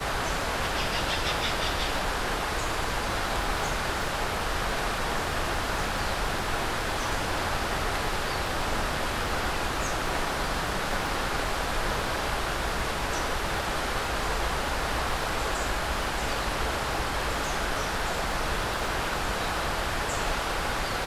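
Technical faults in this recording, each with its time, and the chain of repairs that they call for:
surface crackle 47 per second −35 dBFS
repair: click removal

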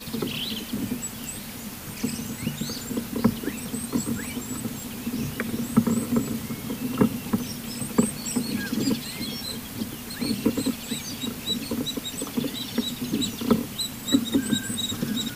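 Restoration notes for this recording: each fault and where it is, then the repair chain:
0:04.80: click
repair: click removal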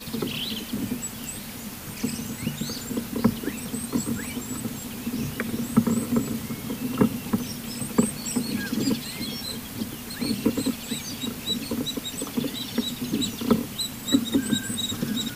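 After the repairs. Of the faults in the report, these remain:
none of them is left

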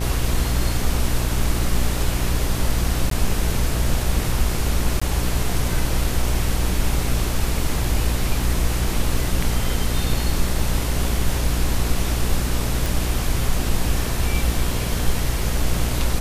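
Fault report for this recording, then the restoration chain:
mains buzz 60 Hz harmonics 30 −24 dBFS
0:03.10–0:03.11: drop-out 13 ms
0:05.00–0:05.01: drop-out 15 ms
0:12.86: click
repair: click removal
hum removal 60 Hz, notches 30
repair the gap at 0:03.10, 13 ms
repair the gap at 0:05.00, 15 ms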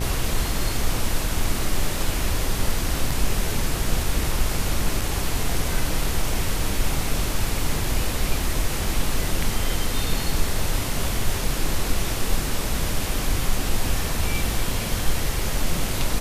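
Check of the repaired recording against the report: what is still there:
none of them is left

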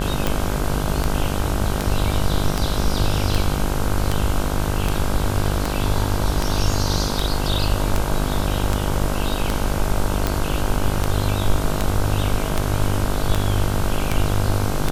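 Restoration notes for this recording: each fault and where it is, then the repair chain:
mains buzz 50 Hz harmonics 32 −24 dBFS
scratch tick 78 rpm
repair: click removal
hum removal 50 Hz, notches 32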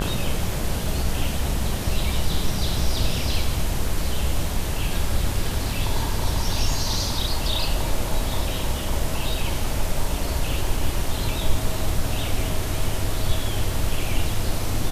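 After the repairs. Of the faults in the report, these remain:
none of them is left

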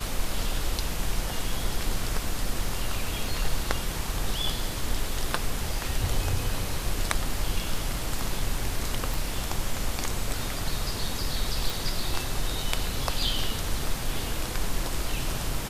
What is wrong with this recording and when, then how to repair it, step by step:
0:09.14: click
0:11.70: click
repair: click removal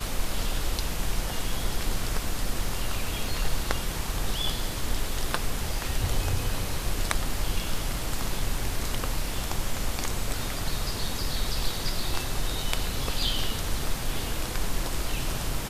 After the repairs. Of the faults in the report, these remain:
none of them is left

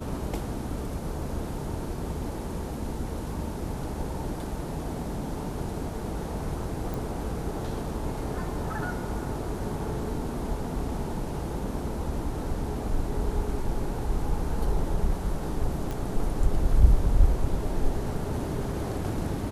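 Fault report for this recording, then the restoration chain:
0:06.94: click
0:15.91: click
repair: click removal

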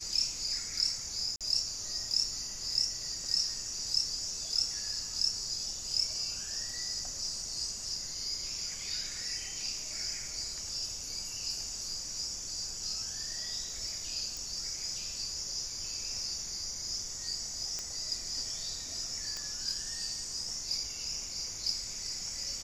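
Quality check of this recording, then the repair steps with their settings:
0:01.36–0:01.41: drop-out 47 ms
0:14.37: click
0:17.79: click −22 dBFS
0:19.37: click −23 dBFS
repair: click removal
repair the gap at 0:01.36, 47 ms

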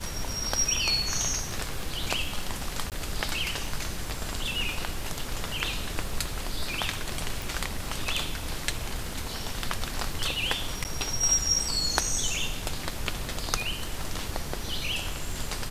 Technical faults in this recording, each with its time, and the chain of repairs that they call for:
surface crackle 25 per second −36 dBFS
0:02.90–0:02.92: drop-out 18 ms
0:07.42: click
0:10.84–0:10.85: drop-out 9.2 ms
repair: click removal
repair the gap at 0:02.90, 18 ms
repair the gap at 0:10.84, 9.2 ms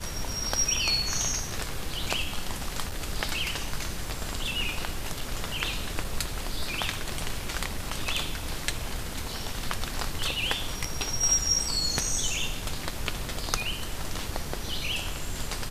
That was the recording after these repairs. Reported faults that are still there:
none of them is left

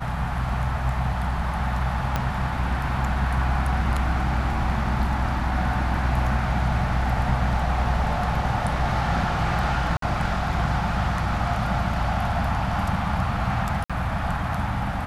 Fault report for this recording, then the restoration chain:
0:02.16: click −10 dBFS
0:09.97–0:10.02: drop-out 53 ms
0:13.84–0:13.90: drop-out 56 ms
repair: click removal
repair the gap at 0:09.97, 53 ms
repair the gap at 0:13.84, 56 ms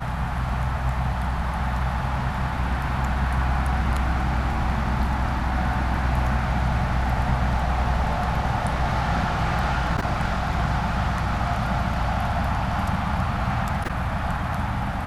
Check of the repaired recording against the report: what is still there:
0:02.16: click

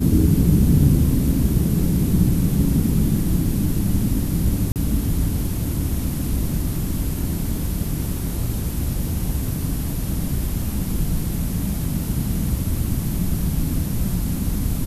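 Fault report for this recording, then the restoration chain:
0:04.72–0:04.76: drop-out 38 ms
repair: repair the gap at 0:04.72, 38 ms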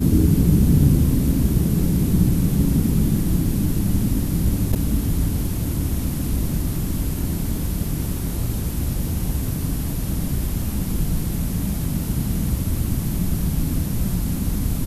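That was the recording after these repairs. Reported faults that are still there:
none of them is left

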